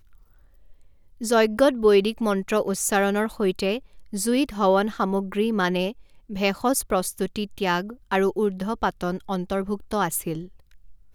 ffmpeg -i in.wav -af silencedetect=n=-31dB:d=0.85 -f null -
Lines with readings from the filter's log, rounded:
silence_start: 0.00
silence_end: 1.21 | silence_duration: 1.21